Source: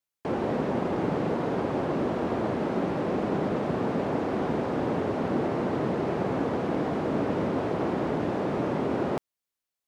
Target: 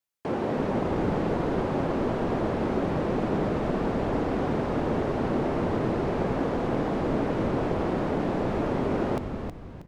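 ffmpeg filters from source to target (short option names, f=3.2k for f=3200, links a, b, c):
-filter_complex "[0:a]asplit=6[a][b][c][d][e][f];[b]adelay=318,afreqshift=-150,volume=-6dB[g];[c]adelay=636,afreqshift=-300,volume=-14.2dB[h];[d]adelay=954,afreqshift=-450,volume=-22.4dB[i];[e]adelay=1272,afreqshift=-600,volume=-30.5dB[j];[f]adelay=1590,afreqshift=-750,volume=-38.7dB[k];[a][g][h][i][j][k]amix=inputs=6:normalize=0"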